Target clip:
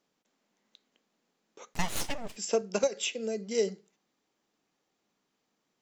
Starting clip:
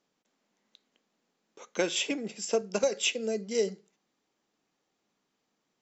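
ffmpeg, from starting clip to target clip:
-filter_complex "[0:a]asplit=3[s0][s1][s2];[s0]afade=t=out:st=1.73:d=0.02[s3];[s1]aeval=exprs='abs(val(0))':c=same,afade=t=in:st=1.73:d=0.02,afade=t=out:st=2.35:d=0.02[s4];[s2]afade=t=in:st=2.35:d=0.02[s5];[s3][s4][s5]amix=inputs=3:normalize=0,asplit=3[s6][s7][s8];[s6]afade=t=out:st=2.86:d=0.02[s9];[s7]acompressor=threshold=0.0355:ratio=6,afade=t=in:st=2.86:d=0.02,afade=t=out:st=3.56:d=0.02[s10];[s8]afade=t=in:st=3.56:d=0.02[s11];[s9][s10][s11]amix=inputs=3:normalize=0"

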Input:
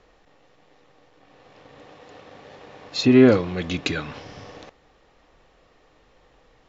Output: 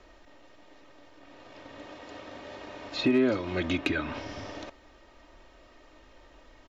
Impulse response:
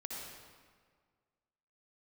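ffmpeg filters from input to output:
-filter_complex "[0:a]aecho=1:1:3.2:0.62,acrossover=split=400|3100[s0][s1][s2];[s0]acompressor=threshold=0.0316:ratio=4[s3];[s1]acompressor=threshold=0.0355:ratio=4[s4];[s2]acompressor=threshold=0.00316:ratio=4[s5];[s3][s4][s5]amix=inputs=3:normalize=0,volume=6.68,asoftclip=hard,volume=0.15,volume=1.12"

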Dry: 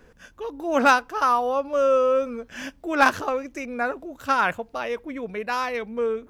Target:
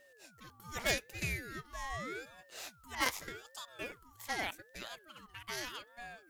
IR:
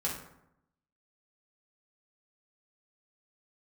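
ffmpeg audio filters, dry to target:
-af "aeval=exprs='val(0)+0.0126*sin(2*PI*630*n/s)':c=same,aderivative,aeval=exprs='val(0)*sin(2*PI*860*n/s+860*0.4/0.83*sin(2*PI*0.83*n/s))':c=same,volume=1.19"

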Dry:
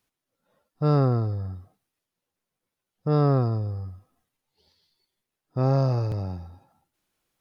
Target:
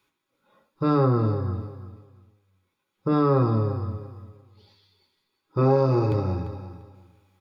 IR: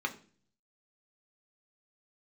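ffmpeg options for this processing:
-filter_complex "[0:a]asettb=1/sr,asplit=3[s0][s1][s2];[s0]atrim=end=5.584[s3];[s1]atrim=start=5.58:end=6.12,asetpts=PTS-STARTPTS,afade=t=in:d=0.004:c=qsin,afade=t=out:st=0.536:d=0.004:c=qsin,equalizer=f=350:w=2.9:g=8[s4];[s2]atrim=start=6.116[s5];[s3][s4]acrossfade=d=0.004:c1=hsin:c2=qsin[s6];[s6][s5]acrossfade=d=0.004:c1=qsin:c2=hsin,acompressor=threshold=0.0708:ratio=4,aecho=1:1:345|690|1035:0.237|0.0522|0.0115[s7];[1:a]atrim=start_sample=2205,atrim=end_sample=3969[s8];[s7][s8]afir=irnorm=-1:irlink=0,volume=1.5"

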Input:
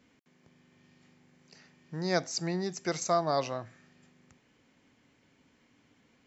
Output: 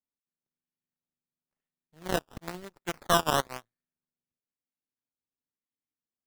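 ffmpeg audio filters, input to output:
-filter_complex "[0:a]aeval=exprs='0.224*(cos(1*acos(clip(val(0)/0.224,-1,1)))-cos(1*PI/2))+0.0282*(cos(6*acos(clip(val(0)/0.224,-1,1)))-cos(6*PI/2))+0.0316*(cos(7*acos(clip(val(0)/0.224,-1,1)))-cos(7*PI/2))+0.02*(cos(8*acos(clip(val(0)/0.224,-1,1)))-cos(8*PI/2))':c=same,asplit=3[s0][s1][s2];[s0]afade=t=out:st=2.19:d=0.02[s3];[s1]adynamicequalizer=threshold=0.0112:dfrequency=1100:dqfactor=0.88:tfrequency=1100:tqfactor=0.88:attack=5:release=100:ratio=0.375:range=3:mode=boostabove:tftype=bell,afade=t=in:st=2.19:d=0.02,afade=t=out:st=3.65:d=0.02[s4];[s2]afade=t=in:st=3.65:d=0.02[s5];[s3][s4][s5]amix=inputs=3:normalize=0,acrusher=samples=14:mix=1:aa=0.000001:lfo=1:lforange=14:lforate=1"

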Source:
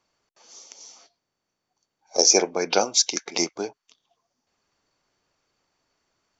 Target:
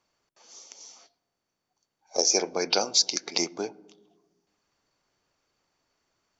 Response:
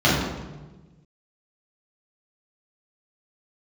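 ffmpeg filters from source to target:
-filter_complex "[0:a]asettb=1/sr,asplit=3[s0][s1][s2];[s0]atrim=end=2.334[s3];[s1]atrim=start=2.33:end=3.38,asetpts=PTS-STARTPTS,afade=t=in:d=0.004:c=qsin,afade=t=out:st=1.046:d=0.004:c=qsin,equalizer=f=4600:t=o:w=0.45:g=10[s4];[s2]atrim=start=3.376[s5];[s3][s4]acrossfade=d=0.004:c1=hsin:c2=qsin[s6];[s6][s5]acrossfade=d=0.004:c1=qsin:c2=hsin,acompressor=threshold=0.1:ratio=2,asplit=2[s7][s8];[1:a]atrim=start_sample=2205,highshelf=f=2700:g=-10.5,adelay=60[s9];[s8][s9]afir=irnorm=-1:irlink=0,volume=0.00668[s10];[s7][s10]amix=inputs=2:normalize=0,volume=0.794"

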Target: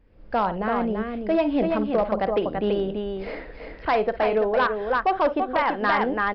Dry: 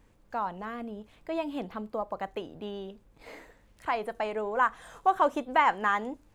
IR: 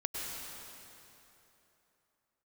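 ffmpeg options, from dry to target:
-filter_complex "[0:a]acontrast=89,equalizer=f=125:t=o:w=1:g=-4,equalizer=f=500:t=o:w=1:g=4,equalizer=f=1000:t=o:w=1:g=-8,equalizer=f=2000:t=o:w=1:g=-3,equalizer=f=4000:t=o:w=1:g=-12,asplit=2[s0][s1];[s1]aecho=0:1:53|335:0.224|0.531[s2];[s0][s2]amix=inputs=2:normalize=0,dynaudnorm=f=110:g=3:m=5.31,equalizer=f=390:w=0.51:g=-5,aresample=11025,volume=3.55,asoftclip=hard,volume=0.282,aresample=44100,volume=0.631"

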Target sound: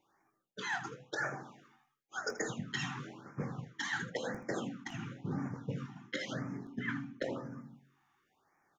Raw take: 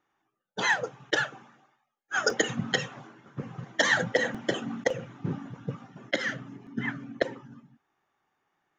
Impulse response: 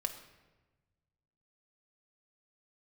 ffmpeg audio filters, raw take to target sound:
-af "bandreject=f=45.64:t=h:w=4,bandreject=f=91.28:t=h:w=4,bandreject=f=136.92:t=h:w=4,bandreject=f=182.56:t=h:w=4,bandreject=f=228.2:t=h:w=4,bandreject=f=273.84:t=h:w=4,bandreject=f=319.48:t=h:w=4,bandreject=f=365.12:t=h:w=4,bandreject=f=410.76:t=h:w=4,bandreject=f=456.4:t=h:w=4,bandreject=f=502.04:t=h:w=4,bandreject=f=547.68:t=h:w=4,bandreject=f=593.32:t=h:w=4,bandreject=f=638.96:t=h:w=4,bandreject=f=684.6:t=h:w=4,bandreject=f=730.24:t=h:w=4,bandreject=f=775.88:t=h:w=4,areverse,acompressor=threshold=0.0141:ratio=12,areverse,aecho=1:1:21|80:0.282|0.211,afftfilt=real='re*(1-between(b*sr/1024,480*pow(3600/480,0.5+0.5*sin(2*PI*0.96*pts/sr))/1.41,480*pow(3600/480,0.5+0.5*sin(2*PI*0.96*pts/sr))*1.41))':imag='im*(1-between(b*sr/1024,480*pow(3600/480,0.5+0.5*sin(2*PI*0.96*pts/sr))/1.41,480*pow(3600/480,0.5+0.5*sin(2*PI*0.96*pts/sr))*1.41))':win_size=1024:overlap=0.75,volume=1.41"

